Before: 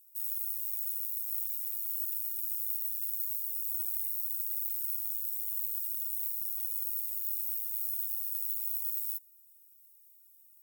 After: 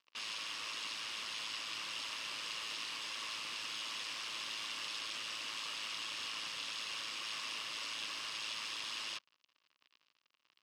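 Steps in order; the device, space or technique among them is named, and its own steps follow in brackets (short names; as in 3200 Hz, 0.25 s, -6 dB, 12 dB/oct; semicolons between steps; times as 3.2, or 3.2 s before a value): blown loudspeaker (crossover distortion -51 dBFS; speaker cabinet 190–5000 Hz, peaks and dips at 200 Hz -7 dB, 410 Hz -7 dB, 740 Hz -8 dB, 1100 Hz +8 dB, 2800 Hz +8 dB, 5000 Hz +4 dB); gain +16 dB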